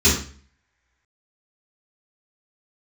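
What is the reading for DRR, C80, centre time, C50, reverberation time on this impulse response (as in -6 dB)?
-10.5 dB, 10.0 dB, 35 ms, 5.0 dB, 0.45 s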